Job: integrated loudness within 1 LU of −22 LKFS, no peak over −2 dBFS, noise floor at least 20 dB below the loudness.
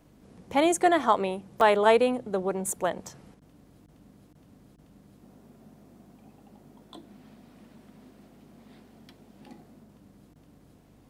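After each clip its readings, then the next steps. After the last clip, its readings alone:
number of dropouts 1; longest dropout 1.8 ms; mains hum 50 Hz; hum harmonics up to 300 Hz; level of the hum −54 dBFS; integrated loudness −24.5 LKFS; sample peak −8.5 dBFS; target loudness −22.0 LKFS
→ repair the gap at 0:01.61, 1.8 ms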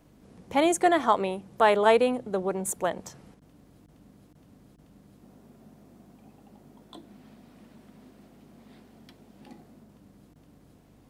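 number of dropouts 0; mains hum 50 Hz; hum harmonics up to 250 Hz; level of the hum −55 dBFS
→ hum removal 50 Hz, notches 5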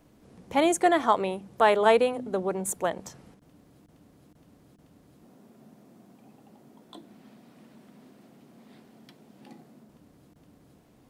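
mains hum none found; integrated loudness −24.5 LKFS; sample peak −8.0 dBFS; target loudness −22.0 LKFS
→ level +2.5 dB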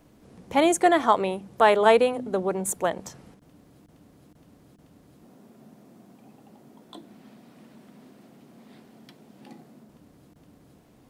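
integrated loudness −22.0 LKFS; sample peak −5.5 dBFS; background noise floor −57 dBFS

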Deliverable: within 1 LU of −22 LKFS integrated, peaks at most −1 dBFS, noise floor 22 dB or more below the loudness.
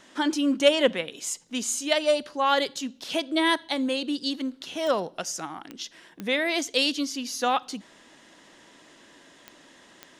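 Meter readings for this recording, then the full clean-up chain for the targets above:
number of clicks 5; integrated loudness −26.0 LKFS; sample peak −7.5 dBFS; target loudness −22.0 LKFS
→ click removal
level +4 dB

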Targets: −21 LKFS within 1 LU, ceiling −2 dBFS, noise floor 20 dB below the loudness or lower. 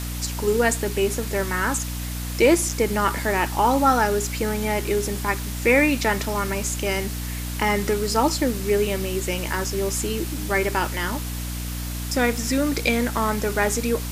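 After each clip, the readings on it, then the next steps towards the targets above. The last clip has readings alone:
mains hum 60 Hz; hum harmonics up to 300 Hz; level of the hum −28 dBFS; background noise floor −29 dBFS; target noise floor −43 dBFS; integrated loudness −23.0 LKFS; sample peak −5.0 dBFS; target loudness −21.0 LKFS
→ mains-hum notches 60/120/180/240/300 Hz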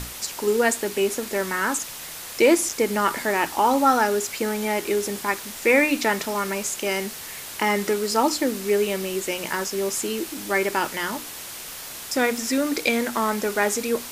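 mains hum none found; background noise floor −37 dBFS; target noise floor −43 dBFS
→ noise reduction from a noise print 6 dB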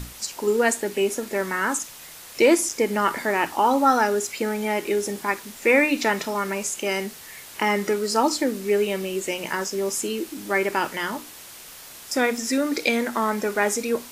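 background noise floor −43 dBFS; target noise floor −44 dBFS
→ noise reduction from a noise print 6 dB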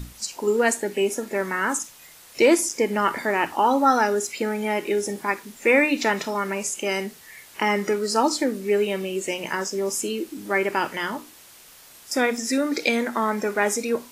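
background noise floor −49 dBFS; integrated loudness −23.5 LKFS; sample peak −5.5 dBFS; target loudness −21.0 LKFS
→ level +2.5 dB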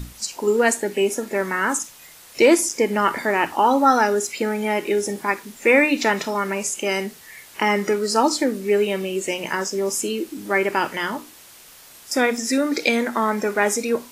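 integrated loudness −21.0 LKFS; sample peak −3.0 dBFS; background noise floor −46 dBFS

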